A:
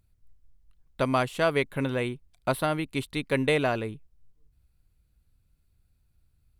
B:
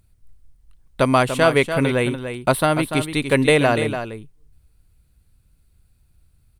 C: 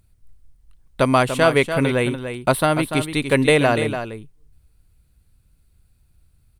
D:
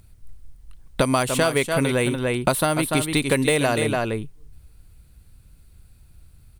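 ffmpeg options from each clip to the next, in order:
ffmpeg -i in.wav -filter_complex "[0:a]equalizer=frequency=9000:width=4.8:gain=7.5,asplit=2[link_01][link_02];[link_02]aecho=0:1:291:0.355[link_03];[link_01][link_03]amix=inputs=2:normalize=0,volume=8.5dB" out.wav
ffmpeg -i in.wav -af anull out.wav
ffmpeg -i in.wav -filter_complex "[0:a]acrossover=split=5000[link_01][link_02];[link_01]acompressor=threshold=-26dB:ratio=6[link_03];[link_02]asoftclip=type=hard:threshold=-33dB[link_04];[link_03][link_04]amix=inputs=2:normalize=0,volume=8dB" out.wav

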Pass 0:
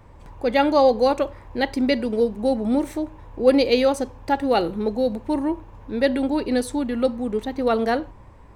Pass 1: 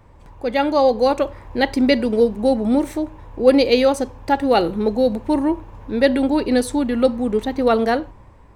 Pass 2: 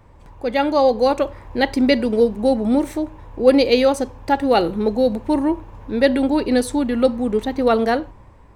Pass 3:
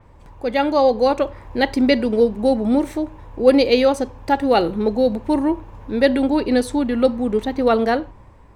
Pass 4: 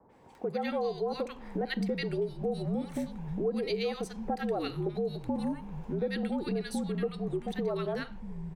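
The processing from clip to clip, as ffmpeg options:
ffmpeg -i in.wav -af "dynaudnorm=framelen=250:gausssize=9:maxgain=11.5dB,volume=-1dB" out.wav
ffmpeg -i in.wav -af anull out.wav
ffmpeg -i in.wav -af "adynamicequalizer=threshold=0.00794:dfrequency=5800:dqfactor=0.7:tfrequency=5800:tqfactor=0.7:attack=5:release=100:ratio=0.375:range=3:mode=cutabove:tftype=highshelf" out.wav
ffmpeg -i in.wav -filter_complex "[0:a]acrossover=split=170|1200[link_01][link_02][link_03];[link_03]adelay=90[link_04];[link_01]adelay=640[link_05];[link_05][link_02][link_04]amix=inputs=3:normalize=0,afreqshift=-57,acompressor=threshold=-26dB:ratio=4,volume=-4.5dB" out.wav

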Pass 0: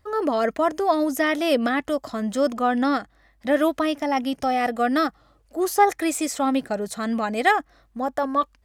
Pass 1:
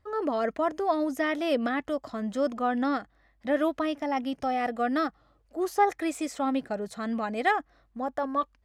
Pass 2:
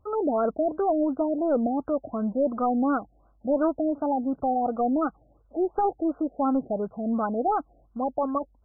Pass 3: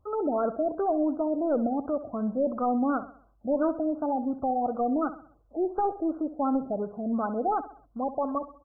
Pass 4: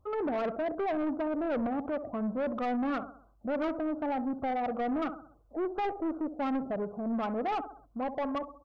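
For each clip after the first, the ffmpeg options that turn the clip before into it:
ffmpeg -i in.wav -af "lowpass=frequency=3600:poles=1,volume=-5.5dB" out.wav
ffmpeg -i in.wav -af "aeval=exprs='0.237*sin(PI/2*2*val(0)/0.237)':channel_layout=same,afftfilt=real='re*lt(b*sr/1024,770*pow(1600/770,0.5+0.5*sin(2*PI*2.8*pts/sr)))':imag='im*lt(b*sr/1024,770*pow(1600/770,0.5+0.5*sin(2*PI*2.8*pts/sr)))':win_size=1024:overlap=0.75,volume=-5dB" out.wav
ffmpeg -i in.wav -af "aecho=1:1:65|130|195|260:0.211|0.093|0.0409|0.018,volume=-2.5dB" out.wav
ffmpeg -i in.wav -af "asoftclip=type=tanh:threshold=-27.5dB" out.wav

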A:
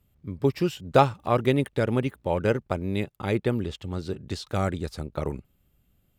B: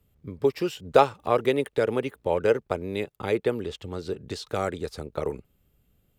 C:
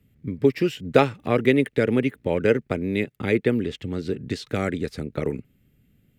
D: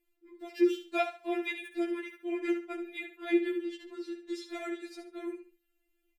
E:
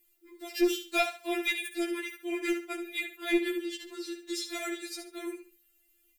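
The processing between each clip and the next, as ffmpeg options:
ffmpeg -i in.wav -filter_complex "[0:a]equalizer=frequency=450:width=4.6:gain=7,acrossover=split=300|4200[link_01][link_02][link_03];[link_01]acompressor=threshold=-36dB:ratio=6[link_04];[link_04][link_02][link_03]amix=inputs=3:normalize=0" out.wav
ffmpeg -i in.wav -af "equalizer=frequency=125:width_type=o:width=1:gain=8,equalizer=frequency=250:width_type=o:width=1:gain=11,equalizer=frequency=1000:width_type=o:width=1:gain=-7,equalizer=frequency=2000:width_type=o:width=1:gain=11,volume=-1dB" out.wav
ffmpeg -i in.wav -filter_complex "[0:a]asplit=2[link_01][link_02];[link_02]aecho=0:1:70|140|210:0.316|0.0791|0.0198[link_03];[link_01][link_03]amix=inputs=2:normalize=0,afftfilt=real='re*4*eq(mod(b,16),0)':imag='im*4*eq(mod(b,16),0)':win_size=2048:overlap=0.75,volume=-7dB" out.wav
ffmpeg -i in.wav -filter_complex "[0:a]crystalizer=i=5.5:c=0,asplit=2[link_01][link_02];[link_02]aeval=exprs='clip(val(0),-1,0.0376)':channel_layout=same,volume=-6.5dB[link_03];[link_01][link_03]amix=inputs=2:normalize=0,volume=-3.5dB" out.wav

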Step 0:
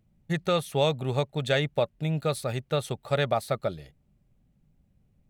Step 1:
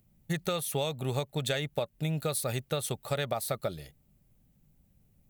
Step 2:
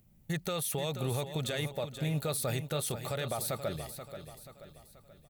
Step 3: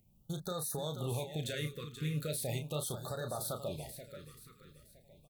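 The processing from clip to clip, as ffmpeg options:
ffmpeg -i in.wav -af "aemphasis=mode=production:type=50fm,acompressor=threshold=-27dB:ratio=10" out.wav
ffmpeg -i in.wav -filter_complex "[0:a]alimiter=level_in=3dB:limit=-24dB:level=0:latency=1:release=14,volume=-3dB,asplit=2[link_01][link_02];[link_02]aecho=0:1:482|964|1446|1928|2410:0.316|0.142|0.064|0.0288|0.013[link_03];[link_01][link_03]amix=inputs=2:normalize=0,volume=2dB" out.wav
ffmpeg -i in.wav -filter_complex "[0:a]asplit=2[link_01][link_02];[link_02]adelay=33,volume=-8dB[link_03];[link_01][link_03]amix=inputs=2:normalize=0,afftfilt=real='re*(1-between(b*sr/1024,710*pow(2600/710,0.5+0.5*sin(2*PI*0.39*pts/sr))/1.41,710*pow(2600/710,0.5+0.5*sin(2*PI*0.39*pts/sr))*1.41))':imag='im*(1-between(b*sr/1024,710*pow(2600/710,0.5+0.5*sin(2*PI*0.39*pts/sr))/1.41,710*pow(2600/710,0.5+0.5*sin(2*PI*0.39*pts/sr))*1.41))':win_size=1024:overlap=0.75,volume=-4.5dB" out.wav

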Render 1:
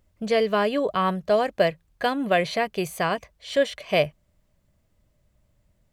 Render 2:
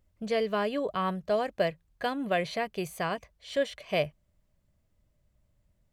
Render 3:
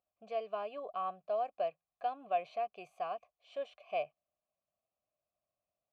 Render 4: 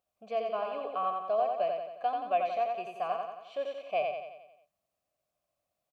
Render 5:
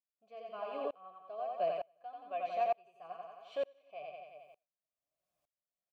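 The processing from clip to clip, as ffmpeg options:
ffmpeg -i in.wav -af "lowshelf=frequency=140:gain=3.5,volume=-7dB" out.wav
ffmpeg -i in.wav -filter_complex "[0:a]asplit=3[link_01][link_02][link_03];[link_01]bandpass=frequency=730:width_type=q:width=8,volume=0dB[link_04];[link_02]bandpass=frequency=1090:width_type=q:width=8,volume=-6dB[link_05];[link_03]bandpass=frequency=2440:width_type=q:width=8,volume=-9dB[link_06];[link_04][link_05][link_06]amix=inputs=3:normalize=0,equalizer=frequency=7100:width=1.2:gain=2.5" out.wav
ffmpeg -i in.wav -af "aecho=1:1:89|178|267|356|445|534|623:0.631|0.334|0.177|0.0939|0.0498|0.0264|0.014,volume=4.5dB" out.wav
ffmpeg -i in.wav -af "flanger=delay=5.4:depth=2:regen=45:speed=1.9:shape=sinusoidal,aeval=exprs='val(0)*pow(10,-29*if(lt(mod(-1.1*n/s,1),2*abs(-1.1)/1000),1-mod(-1.1*n/s,1)/(2*abs(-1.1)/1000),(mod(-1.1*n/s,1)-2*abs(-1.1)/1000)/(1-2*abs(-1.1)/1000))/20)':channel_layout=same,volume=5dB" out.wav

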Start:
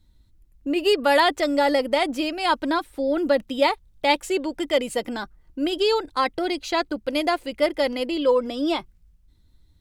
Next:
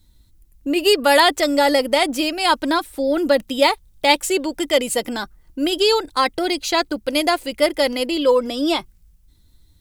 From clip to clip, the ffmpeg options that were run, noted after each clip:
ffmpeg -i in.wav -af "highshelf=frequency=5200:gain=11.5,volume=3.5dB" out.wav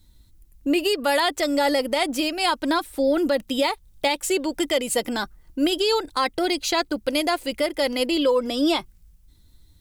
ffmpeg -i in.wav -af "alimiter=limit=-12dB:level=0:latency=1:release=252" out.wav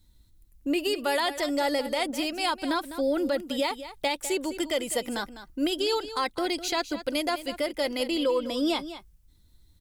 ffmpeg -i in.wav -af "aecho=1:1:203:0.224,volume=-5.5dB" out.wav

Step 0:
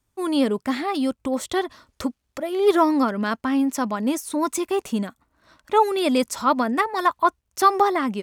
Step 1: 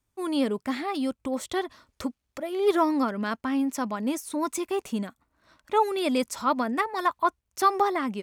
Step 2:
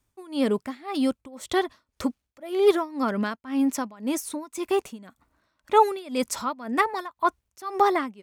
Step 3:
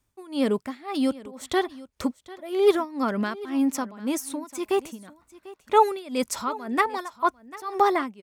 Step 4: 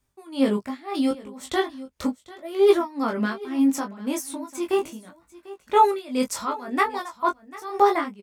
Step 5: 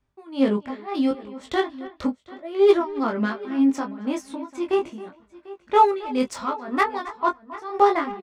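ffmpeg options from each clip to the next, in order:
ffmpeg -i in.wav -af "equalizer=frequency=2300:width_type=o:width=0.28:gain=2,volume=-5dB" out.wav
ffmpeg -i in.wav -af "tremolo=f=1.9:d=0.92,volume=5dB" out.wav
ffmpeg -i in.wav -af "aecho=1:1:745:0.112" out.wav
ffmpeg -i in.wav -filter_complex "[0:a]flanger=delay=20:depth=3.6:speed=0.73,asplit=2[link_01][link_02];[link_02]adelay=15,volume=-8.5dB[link_03];[link_01][link_03]amix=inputs=2:normalize=0,volume=3dB" out.wav
ffmpeg -i in.wav -filter_complex "[0:a]asplit=2[link_01][link_02];[link_02]adelay=270,highpass=300,lowpass=3400,asoftclip=type=hard:threshold=-14dB,volume=-16dB[link_03];[link_01][link_03]amix=inputs=2:normalize=0,adynamicsmooth=sensitivity=2:basefreq=3800,volume=1dB" out.wav

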